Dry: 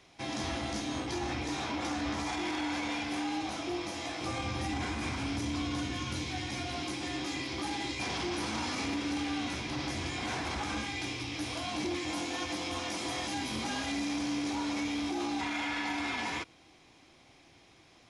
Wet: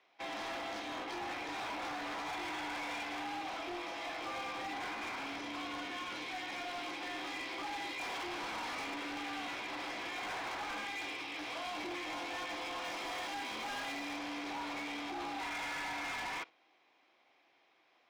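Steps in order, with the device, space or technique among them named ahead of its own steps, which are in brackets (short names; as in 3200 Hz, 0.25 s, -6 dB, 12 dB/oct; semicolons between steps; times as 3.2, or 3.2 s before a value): walkie-talkie (BPF 540–2900 Hz; hard clip -39 dBFS, distortion -10 dB; gate -50 dBFS, range -8 dB); 12.84–14.17 high shelf 9200 Hz +5 dB; gain +1.5 dB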